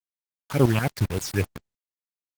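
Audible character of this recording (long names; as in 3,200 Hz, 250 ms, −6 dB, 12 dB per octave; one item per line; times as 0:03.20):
phaser sweep stages 6, 3.6 Hz, lowest notch 470–1,900 Hz
tremolo saw up 7.6 Hz, depth 75%
a quantiser's noise floor 6 bits, dither none
Opus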